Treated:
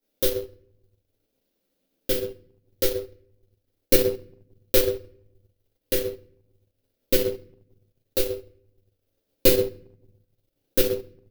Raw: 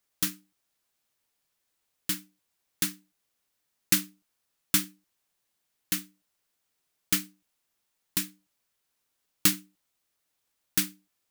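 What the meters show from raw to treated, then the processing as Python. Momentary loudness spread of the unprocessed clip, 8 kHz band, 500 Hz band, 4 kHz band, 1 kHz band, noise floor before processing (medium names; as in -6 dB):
12 LU, -2.5 dB, +30.0 dB, +2.0 dB, +1.0 dB, -79 dBFS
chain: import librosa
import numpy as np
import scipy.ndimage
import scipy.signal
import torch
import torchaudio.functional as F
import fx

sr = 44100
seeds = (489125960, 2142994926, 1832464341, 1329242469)

y = x * np.sin(2.0 * np.pi * 200.0 * np.arange(len(x)) / sr)
y = fx.graphic_eq_10(y, sr, hz=(125, 250, 500, 1000, 2000, 8000), db=(-4, 10, 11, -9, -6, -10))
y = fx.room_shoebox(y, sr, seeds[0], volume_m3=140.0, walls='mixed', distance_m=2.2)
y = fx.transient(y, sr, attack_db=3, sustain_db=-10)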